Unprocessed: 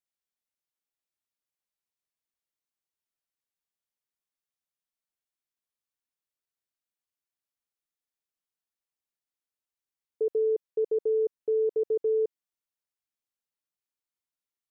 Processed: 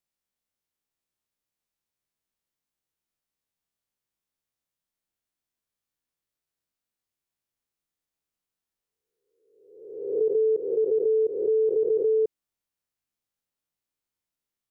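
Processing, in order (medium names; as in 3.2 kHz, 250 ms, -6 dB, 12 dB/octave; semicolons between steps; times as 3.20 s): reverse spectral sustain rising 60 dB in 1.01 s; bass shelf 390 Hz +7 dB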